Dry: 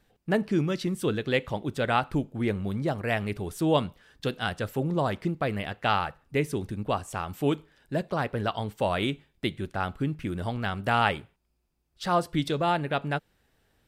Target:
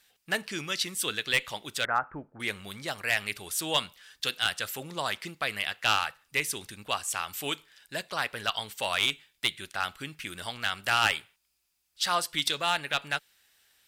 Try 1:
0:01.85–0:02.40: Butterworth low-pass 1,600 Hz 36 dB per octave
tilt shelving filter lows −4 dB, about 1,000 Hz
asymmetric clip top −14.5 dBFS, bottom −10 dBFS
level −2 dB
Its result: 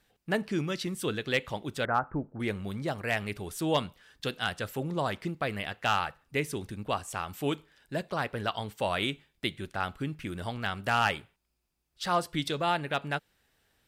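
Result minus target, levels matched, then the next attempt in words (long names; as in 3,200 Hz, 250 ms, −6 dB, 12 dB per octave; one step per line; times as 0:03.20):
1,000 Hz band +2.5 dB
0:01.85–0:02.40: Butterworth low-pass 1,600 Hz 36 dB per octave
tilt shelving filter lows −14.5 dB, about 1,000 Hz
asymmetric clip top −14.5 dBFS, bottom −10 dBFS
level −2 dB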